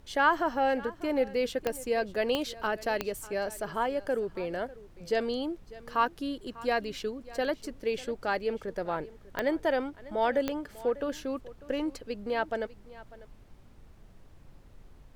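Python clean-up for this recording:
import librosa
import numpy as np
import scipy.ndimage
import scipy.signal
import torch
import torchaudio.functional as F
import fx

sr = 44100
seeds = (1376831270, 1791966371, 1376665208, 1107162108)

y = fx.fix_declick_ar(x, sr, threshold=10.0)
y = fx.noise_reduce(y, sr, print_start_s=13.33, print_end_s=13.83, reduce_db=23.0)
y = fx.fix_echo_inverse(y, sr, delay_ms=596, level_db=-19.0)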